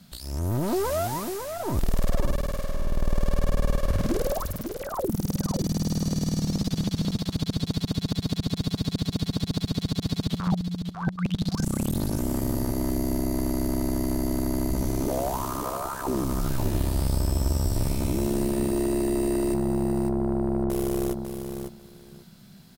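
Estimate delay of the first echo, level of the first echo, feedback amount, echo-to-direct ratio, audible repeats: 548 ms, −7.0 dB, 16%, −7.0 dB, 2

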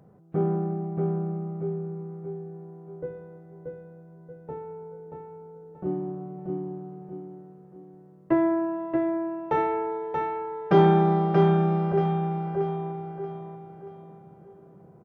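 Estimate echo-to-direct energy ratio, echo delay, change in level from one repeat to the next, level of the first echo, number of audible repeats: −3.5 dB, 631 ms, −8.0 dB, −4.0 dB, 4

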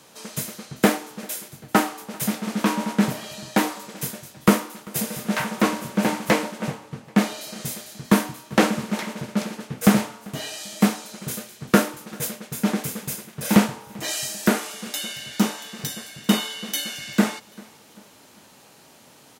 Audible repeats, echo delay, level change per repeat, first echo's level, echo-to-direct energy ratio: 2, 392 ms, −7.5 dB, −24.0 dB, −23.0 dB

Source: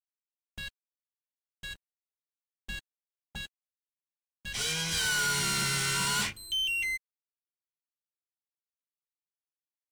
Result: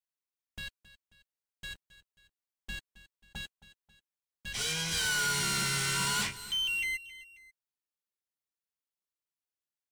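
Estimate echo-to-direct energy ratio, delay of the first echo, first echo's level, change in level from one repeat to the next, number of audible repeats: −16.0 dB, 269 ms, −17.0 dB, −6.5 dB, 2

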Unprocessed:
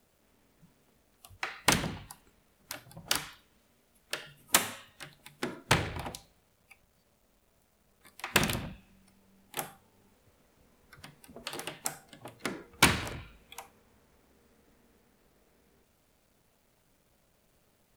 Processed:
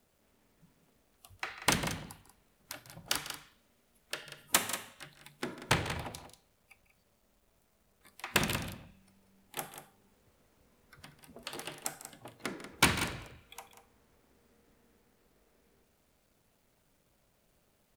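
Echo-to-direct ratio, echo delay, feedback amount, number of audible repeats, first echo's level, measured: −9.5 dB, 147 ms, repeats not evenly spaced, 2, −15.0 dB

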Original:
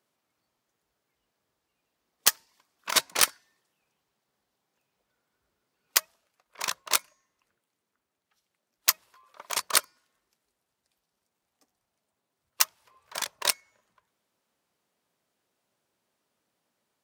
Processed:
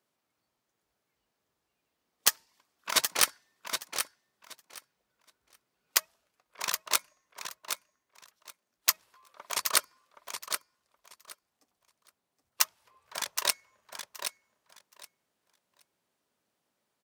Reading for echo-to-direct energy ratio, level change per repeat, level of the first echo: −7.5 dB, −15.5 dB, −7.5 dB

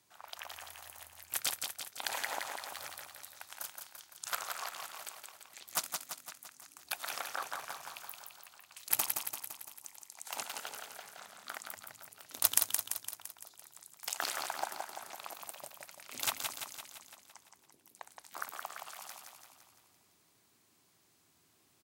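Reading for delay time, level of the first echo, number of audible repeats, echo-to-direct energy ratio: 170 ms, −5.0 dB, 7, −3.0 dB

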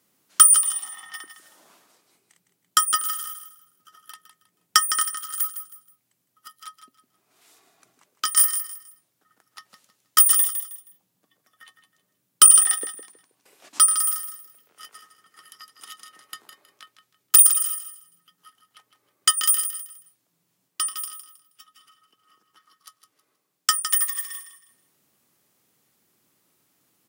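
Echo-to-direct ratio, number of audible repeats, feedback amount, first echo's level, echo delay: −9.5 dB, 3, 28%, −10.0 dB, 159 ms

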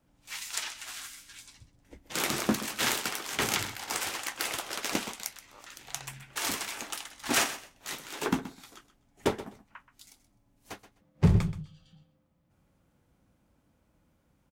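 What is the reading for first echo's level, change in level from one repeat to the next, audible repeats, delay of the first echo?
−14.5 dB, −15.5 dB, 2, 127 ms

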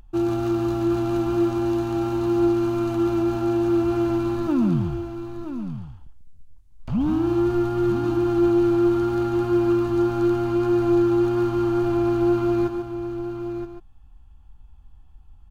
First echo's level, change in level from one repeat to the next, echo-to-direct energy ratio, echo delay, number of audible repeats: −7.5 dB, repeats not evenly spaced, −5.5 dB, 142 ms, 3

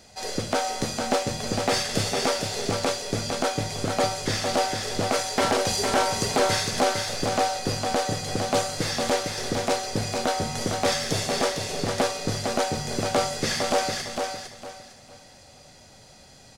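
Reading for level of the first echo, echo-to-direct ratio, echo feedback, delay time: −5.0 dB, −4.5 dB, 28%, 456 ms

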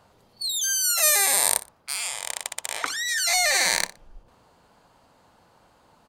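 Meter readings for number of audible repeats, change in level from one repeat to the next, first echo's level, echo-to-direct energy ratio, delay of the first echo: 2, −13.0 dB, −17.0 dB, −17.0 dB, 60 ms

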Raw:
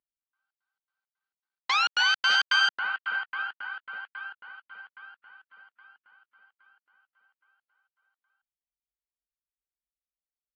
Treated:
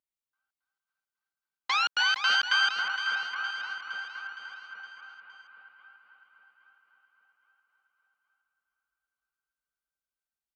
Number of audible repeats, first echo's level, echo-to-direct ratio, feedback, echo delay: 5, −9.5 dB, −8.0 dB, 55%, 464 ms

